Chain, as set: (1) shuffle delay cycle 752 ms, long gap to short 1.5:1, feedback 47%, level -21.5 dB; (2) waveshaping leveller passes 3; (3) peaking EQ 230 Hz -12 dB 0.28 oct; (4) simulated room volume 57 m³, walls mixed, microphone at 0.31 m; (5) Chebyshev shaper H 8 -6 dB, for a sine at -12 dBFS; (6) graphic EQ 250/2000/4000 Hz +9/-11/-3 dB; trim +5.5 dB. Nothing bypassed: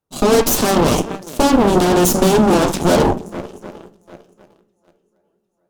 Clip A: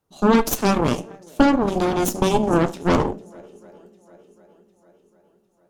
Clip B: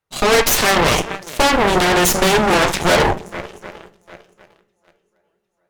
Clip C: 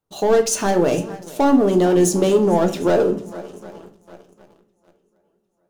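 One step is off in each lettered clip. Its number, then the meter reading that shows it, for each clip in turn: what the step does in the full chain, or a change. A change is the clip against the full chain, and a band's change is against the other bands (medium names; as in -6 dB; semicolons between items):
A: 2, crest factor change +5.0 dB; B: 6, crest factor change -1.5 dB; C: 5, 4 kHz band -4.5 dB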